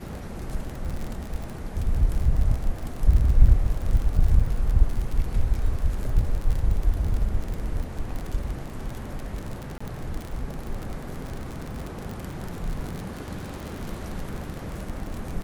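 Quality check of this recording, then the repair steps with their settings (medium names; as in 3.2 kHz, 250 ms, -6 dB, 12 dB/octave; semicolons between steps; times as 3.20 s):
crackle 41 per s -28 dBFS
9.78–9.80 s: dropout 25 ms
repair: de-click; interpolate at 9.78 s, 25 ms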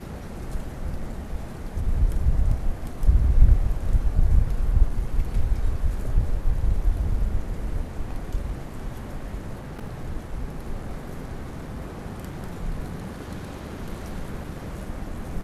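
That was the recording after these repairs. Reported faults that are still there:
nothing left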